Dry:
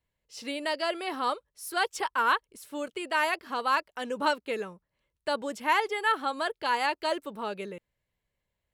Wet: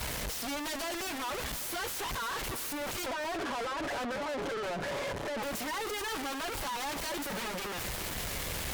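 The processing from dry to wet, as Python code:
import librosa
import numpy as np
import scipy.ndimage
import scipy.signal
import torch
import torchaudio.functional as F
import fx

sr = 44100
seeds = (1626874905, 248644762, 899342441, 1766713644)

y = fx.delta_mod(x, sr, bps=64000, step_db=-26.0)
y = fx.noise_reduce_blind(y, sr, reduce_db=7)
y = y + 0.78 * np.pad(y, (int(7.1 * sr / 1000.0), 0))[:len(y)]
y = fx.over_compress(y, sr, threshold_db=-38.0, ratio=-1.0)
y = fx.leveller(y, sr, passes=5)
y = fx.bandpass_q(y, sr, hz=550.0, q=1.4, at=(3.06, 5.43))
y = fx.fold_sine(y, sr, drive_db=8, ceiling_db=-22.0)
y = fx.tube_stage(y, sr, drive_db=34.0, bias=0.7)
y = y + 10.0 ** (-16.5 / 20.0) * np.pad(y, (int(309 * sr / 1000.0), 0))[:len(y)]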